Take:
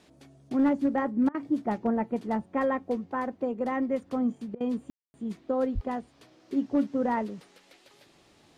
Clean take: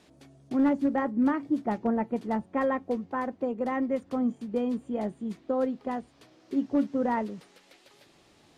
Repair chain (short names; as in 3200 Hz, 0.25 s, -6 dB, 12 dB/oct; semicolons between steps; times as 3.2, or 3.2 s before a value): 5.74–5.86 HPF 140 Hz 24 dB/oct; room tone fill 4.9–5.14; interpolate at 1.29/4.55, 54 ms